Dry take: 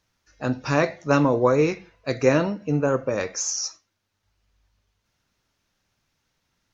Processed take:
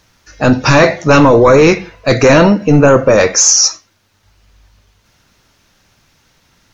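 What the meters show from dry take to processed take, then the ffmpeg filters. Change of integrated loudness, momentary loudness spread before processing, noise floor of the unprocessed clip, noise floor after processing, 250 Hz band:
+14.5 dB, 11 LU, −76 dBFS, −57 dBFS, +13.5 dB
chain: -af "apsyclip=21.5dB,volume=-2dB"

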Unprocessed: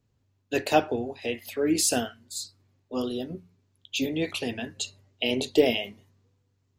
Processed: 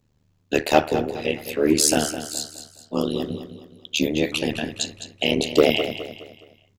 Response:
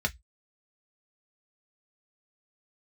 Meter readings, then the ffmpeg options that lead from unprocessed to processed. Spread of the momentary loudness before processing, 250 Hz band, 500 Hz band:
13 LU, +5.5 dB, +5.5 dB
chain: -af "tremolo=f=75:d=0.974,aeval=exprs='0.398*sin(PI/2*1.41*val(0)/0.398)':channel_layout=same,aecho=1:1:209|418|627|836:0.282|0.11|0.0429|0.0167,volume=3dB"

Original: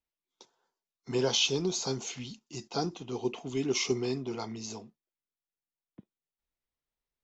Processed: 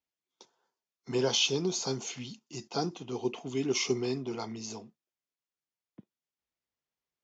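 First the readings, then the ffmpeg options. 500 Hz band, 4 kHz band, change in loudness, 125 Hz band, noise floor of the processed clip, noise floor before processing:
0.0 dB, 0.0 dB, 0.0 dB, −1.0 dB, below −85 dBFS, below −85 dBFS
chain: -af "highpass=89,bandreject=frequency=3900:width=26,aresample=16000,aresample=44100"

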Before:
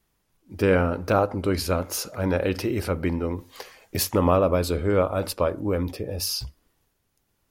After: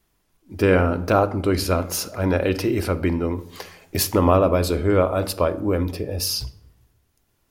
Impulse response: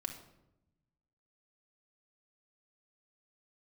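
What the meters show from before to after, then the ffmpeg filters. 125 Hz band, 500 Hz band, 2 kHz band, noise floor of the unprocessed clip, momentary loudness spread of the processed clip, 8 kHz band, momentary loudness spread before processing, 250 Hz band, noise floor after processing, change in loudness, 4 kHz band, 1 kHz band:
+3.5 dB, +3.0 dB, +3.0 dB, −73 dBFS, 10 LU, +3.0 dB, 10 LU, +4.0 dB, −68 dBFS, +3.0 dB, +3.0 dB, +3.5 dB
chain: -filter_complex "[0:a]asplit=2[link_01][link_02];[1:a]atrim=start_sample=2205,asetrate=52920,aresample=44100[link_03];[link_02][link_03]afir=irnorm=-1:irlink=0,volume=-3dB[link_04];[link_01][link_04]amix=inputs=2:normalize=0"

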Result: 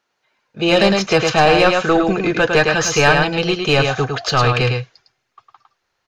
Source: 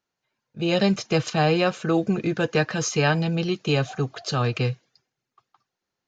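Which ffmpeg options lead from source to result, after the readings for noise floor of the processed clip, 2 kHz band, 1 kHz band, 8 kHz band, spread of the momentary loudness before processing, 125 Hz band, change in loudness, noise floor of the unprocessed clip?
−73 dBFS, +12.0 dB, +11.5 dB, can't be measured, 6 LU, +4.0 dB, +8.5 dB, −84 dBFS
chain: -filter_complex "[0:a]aecho=1:1:106:0.531,asplit=2[link_01][link_02];[link_02]highpass=frequency=720:poles=1,volume=15dB,asoftclip=type=tanh:threshold=-6.5dB[link_03];[link_01][link_03]amix=inputs=2:normalize=0,lowpass=frequency=3000:poles=1,volume=-6dB,asubboost=boost=8:cutoff=74,volume=5dB"

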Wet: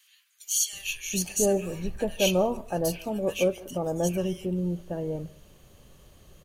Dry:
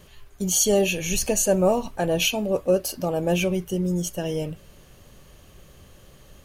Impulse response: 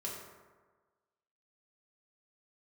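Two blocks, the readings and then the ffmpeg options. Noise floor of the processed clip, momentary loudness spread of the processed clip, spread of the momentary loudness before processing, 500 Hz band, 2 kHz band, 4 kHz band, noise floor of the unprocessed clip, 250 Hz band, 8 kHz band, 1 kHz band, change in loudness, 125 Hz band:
−62 dBFS, 9 LU, 9 LU, −4.0 dB, −5.5 dB, −4.5 dB, −52 dBFS, −4.0 dB, −4.0 dB, −4.5 dB, −5.0 dB, −4.0 dB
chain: -filter_complex "[0:a]bandreject=frequency=5200:width=20,acrossover=split=1700[link_01][link_02];[link_01]adelay=730[link_03];[link_03][link_02]amix=inputs=2:normalize=0,asplit=2[link_04][link_05];[1:a]atrim=start_sample=2205,atrim=end_sample=3969,adelay=143[link_06];[link_05][link_06]afir=irnorm=-1:irlink=0,volume=-23dB[link_07];[link_04][link_07]amix=inputs=2:normalize=0,volume=-4dB"

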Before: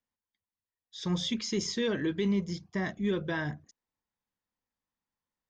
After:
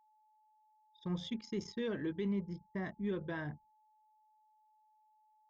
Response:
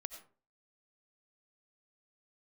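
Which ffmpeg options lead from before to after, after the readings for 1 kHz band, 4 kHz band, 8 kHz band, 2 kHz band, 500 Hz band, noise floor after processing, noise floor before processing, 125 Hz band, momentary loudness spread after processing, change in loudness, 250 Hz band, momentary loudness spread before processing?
−7.5 dB, −14.0 dB, can't be measured, −9.5 dB, −7.0 dB, −71 dBFS, below −85 dBFS, −7.0 dB, 7 LU, −8.0 dB, −7.0 dB, 9 LU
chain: -af "highshelf=frequency=3500:gain=-11,anlmdn=0.158,aeval=exprs='val(0)+0.000891*sin(2*PI*860*n/s)':channel_layout=same,volume=-7dB"

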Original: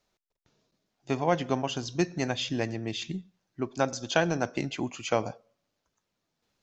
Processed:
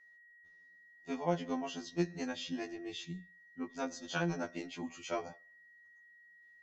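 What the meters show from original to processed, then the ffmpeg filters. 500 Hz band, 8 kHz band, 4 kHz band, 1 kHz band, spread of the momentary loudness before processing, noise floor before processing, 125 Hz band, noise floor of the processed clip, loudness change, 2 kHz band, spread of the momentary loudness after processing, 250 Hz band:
−10.0 dB, can't be measured, −10.0 dB, −9.5 dB, 10 LU, −82 dBFS, −9.5 dB, −61 dBFS, −9.0 dB, −8.5 dB, 23 LU, −7.0 dB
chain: -af "aeval=exprs='val(0)+0.002*sin(2*PI*1900*n/s)':channel_layout=same,afftfilt=real='re*2*eq(mod(b,4),0)':imag='im*2*eq(mod(b,4),0)':win_size=2048:overlap=0.75,volume=-7.5dB"

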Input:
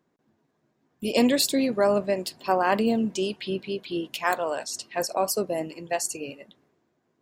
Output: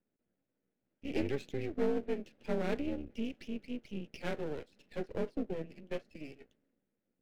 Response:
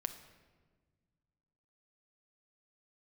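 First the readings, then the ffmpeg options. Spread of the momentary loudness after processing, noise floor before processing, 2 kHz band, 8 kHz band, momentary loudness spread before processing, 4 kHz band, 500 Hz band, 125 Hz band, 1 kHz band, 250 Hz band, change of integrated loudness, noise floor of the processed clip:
11 LU, −73 dBFS, −15.0 dB, below −30 dB, 10 LU, −20.5 dB, −12.0 dB, −5.0 dB, −21.0 dB, −11.0 dB, −12.5 dB, below −85 dBFS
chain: -af "highpass=frequency=330:width_type=q:width=0.5412,highpass=frequency=330:width_type=q:width=1.307,lowpass=frequency=3000:width_type=q:width=0.5176,lowpass=frequency=3000:width_type=q:width=0.7071,lowpass=frequency=3000:width_type=q:width=1.932,afreqshift=-150,aeval=exprs='max(val(0),0)':channel_layout=same,equalizer=frequency=250:width_type=o:width=1:gain=5,equalizer=frequency=500:width_type=o:width=1:gain=4,equalizer=frequency=1000:width_type=o:width=1:gain=-12,volume=-7.5dB"

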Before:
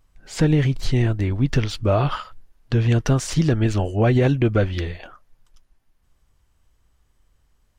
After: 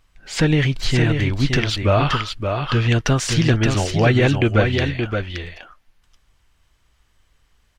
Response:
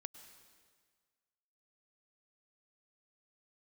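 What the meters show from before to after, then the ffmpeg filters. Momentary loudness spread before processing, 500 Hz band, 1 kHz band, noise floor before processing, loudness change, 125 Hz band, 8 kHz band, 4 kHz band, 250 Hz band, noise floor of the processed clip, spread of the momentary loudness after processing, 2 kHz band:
8 LU, +2.5 dB, +5.0 dB, −64 dBFS, +2.0 dB, +1.5 dB, +5.5 dB, +9.0 dB, +1.5 dB, −62 dBFS, 8 LU, +9.0 dB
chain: -filter_complex "[0:a]equalizer=frequency=2700:width=0.47:gain=9,asplit=2[link_01][link_02];[link_02]aecho=0:1:572:0.531[link_03];[link_01][link_03]amix=inputs=2:normalize=0"

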